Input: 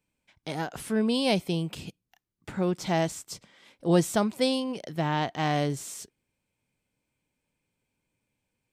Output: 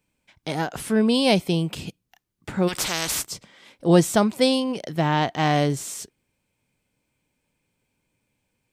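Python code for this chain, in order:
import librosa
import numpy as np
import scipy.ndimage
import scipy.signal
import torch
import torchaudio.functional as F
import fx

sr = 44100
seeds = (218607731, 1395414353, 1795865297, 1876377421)

y = fx.spectral_comp(x, sr, ratio=4.0, at=(2.67, 3.25), fade=0.02)
y = F.gain(torch.from_numpy(y), 6.0).numpy()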